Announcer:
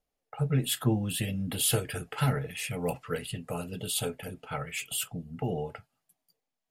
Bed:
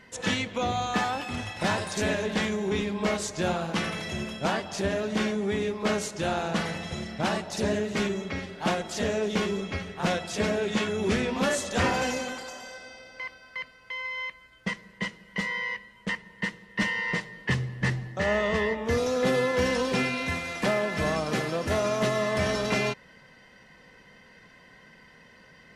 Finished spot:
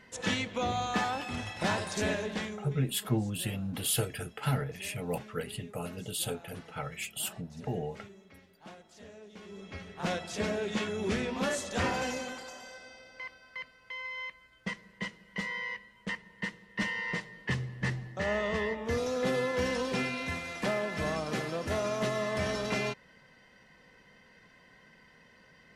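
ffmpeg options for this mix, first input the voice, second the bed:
ffmpeg -i stem1.wav -i stem2.wav -filter_complex "[0:a]adelay=2250,volume=-3dB[link_01];[1:a]volume=14dB,afade=type=out:start_time=2.06:duration=0.72:silence=0.105925,afade=type=in:start_time=9.42:duration=0.71:silence=0.133352[link_02];[link_01][link_02]amix=inputs=2:normalize=0" out.wav

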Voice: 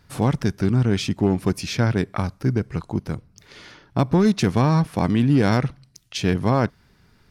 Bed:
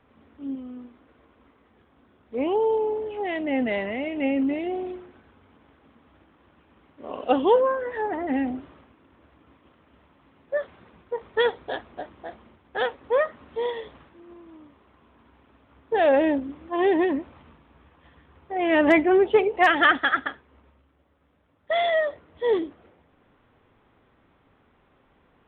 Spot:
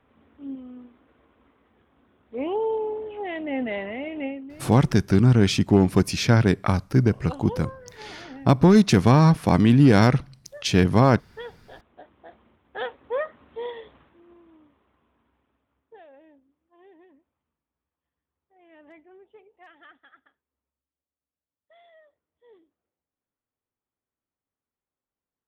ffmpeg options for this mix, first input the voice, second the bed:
ffmpeg -i stem1.wav -i stem2.wav -filter_complex "[0:a]adelay=4500,volume=2.5dB[link_01];[1:a]volume=8dB,afade=type=out:start_time=4.18:duration=0.23:silence=0.211349,afade=type=in:start_time=11.7:duration=1.05:silence=0.281838,afade=type=out:start_time=14.16:duration=1.91:silence=0.0421697[link_02];[link_01][link_02]amix=inputs=2:normalize=0" out.wav

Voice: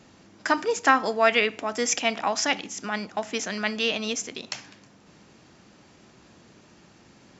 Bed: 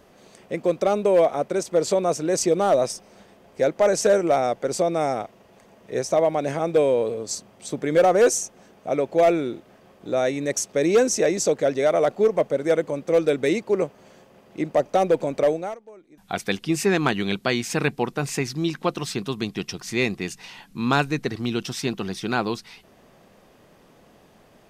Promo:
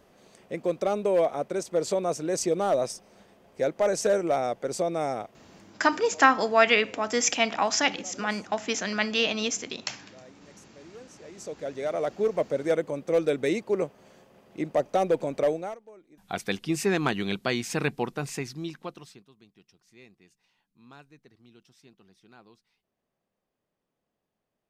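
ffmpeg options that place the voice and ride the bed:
ffmpeg -i stem1.wav -i stem2.wav -filter_complex "[0:a]adelay=5350,volume=0.5dB[link_01];[1:a]volume=19.5dB,afade=type=out:start_time=5.59:duration=0.25:silence=0.0630957,afade=type=in:start_time=11.23:duration=1.3:silence=0.0562341,afade=type=out:start_time=17.98:duration=1.27:silence=0.0530884[link_02];[link_01][link_02]amix=inputs=2:normalize=0" out.wav

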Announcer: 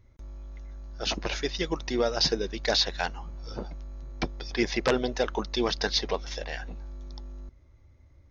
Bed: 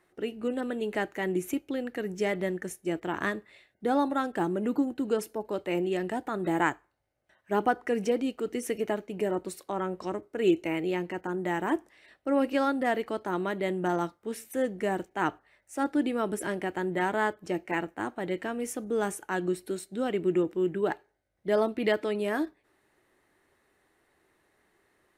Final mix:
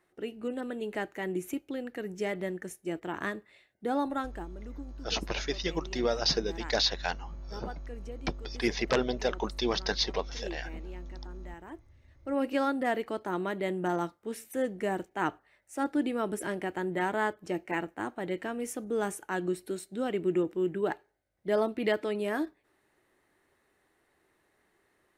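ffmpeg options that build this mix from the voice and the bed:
ffmpeg -i stem1.wav -i stem2.wav -filter_complex "[0:a]adelay=4050,volume=-2.5dB[link_01];[1:a]volume=11.5dB,afade=type=out:start_time=4.18:duration=0.29:silence=0.211349,afade=type=in:start_time=12.07:duration=0.43:silence=0.16788[link_02];[link_01][link_02]amix=inputs=2:normalize=0" out.wav

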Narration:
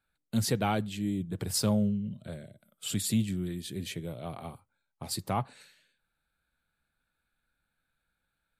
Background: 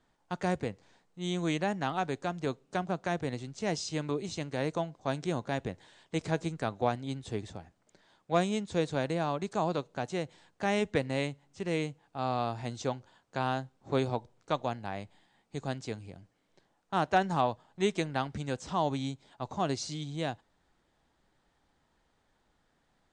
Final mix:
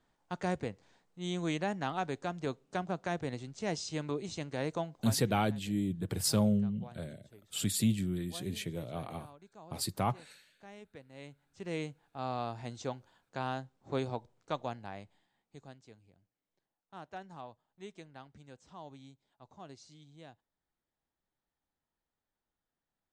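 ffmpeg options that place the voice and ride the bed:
ffmpeg -i stem1.wav -i stem2.wav -filter_complex "[0:a]adelay=4700,volume=-1dB[link_01];[1:a]volume=14.5dB,afade=type=out:start_time=4.97:duration=0.22:silence=0.105925,afade=type=in:start_time=11.12:duration=0.69:silence=0.133352,afade=type=out:start_time=14.69:duration=1.09:silence=0.199526[link_02];[link_01][link_02]amix=inputs=2:normalize=0" out.wav

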